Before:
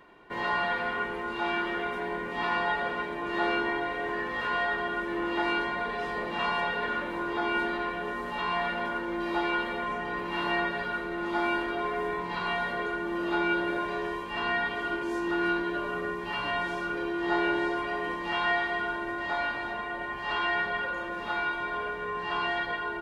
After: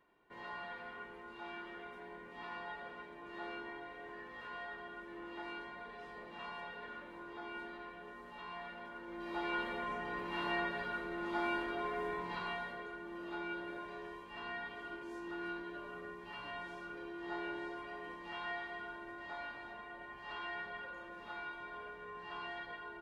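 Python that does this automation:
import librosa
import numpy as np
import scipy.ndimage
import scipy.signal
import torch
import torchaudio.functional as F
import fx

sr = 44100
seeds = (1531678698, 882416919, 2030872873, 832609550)

y = fx.gain(x, sr, db=fx.line((8.91, -17.5), (9.59, -8.0), (12.31, -8.0), (12.84, -15.0)))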